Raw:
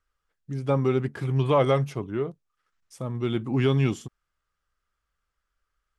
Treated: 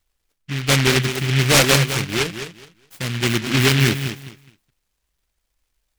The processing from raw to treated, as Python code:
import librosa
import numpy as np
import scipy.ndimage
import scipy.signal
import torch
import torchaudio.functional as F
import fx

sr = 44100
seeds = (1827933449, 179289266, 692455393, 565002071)

y = fx.echo_feedback(x, sr, ms=209, feedback_pct=21, wet_db=-9.5)
y = fx.noise_mod_delay(y, sr, seeds[0], noise_hz=2300.0, depth_ms=0.38)
y = F.gain(torch.from_numpy(y), 6.0).numpy()